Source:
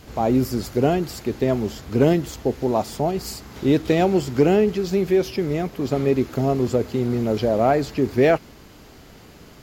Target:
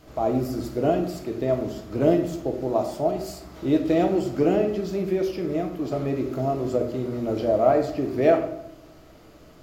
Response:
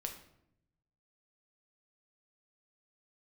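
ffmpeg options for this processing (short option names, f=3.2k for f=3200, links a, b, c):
-filter_complex "[0:a]equalizer=f=315:t=o:w=0.33:g=8,equalizer=f=630:t=o:w=0.33:g=11,equalizer=f=1.25k:t=o:w=0.33:g=6[a];[1:a]atrim=start_sample=2205[b];[a][b]afir=irnorm=-1:irlink=0,volume=-6.5dB"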